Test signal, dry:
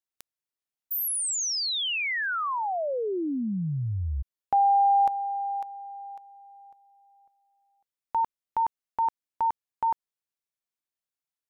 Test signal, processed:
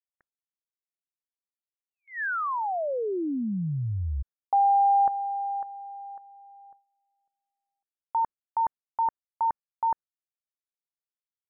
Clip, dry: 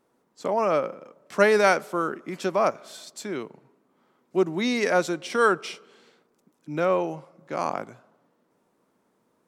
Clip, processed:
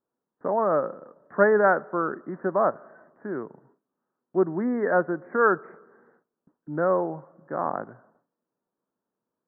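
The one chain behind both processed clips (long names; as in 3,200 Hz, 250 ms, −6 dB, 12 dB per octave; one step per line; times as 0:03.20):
Butterworth low-pass 1,800 Hz 96 dB per octave
noise gate with hold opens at −53 dBFS, closes at −56 dBFS, hold 12 ms, range −17 dB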